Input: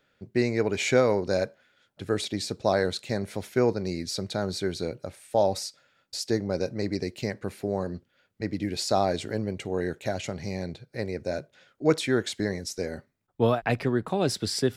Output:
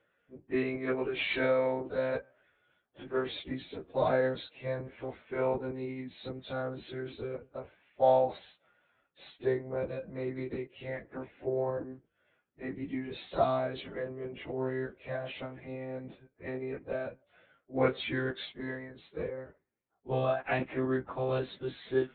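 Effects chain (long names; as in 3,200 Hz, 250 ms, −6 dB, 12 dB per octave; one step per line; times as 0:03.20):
adaptive Wiener filter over 9 samples
one-pitch LPC vocoder at 8 kHz 130 Hz
high-pass filter 71 Hz 6 dB per octave
low-shelf EQ 120 Hz −11.5 dB
time stretch by phase vocoder 1.5×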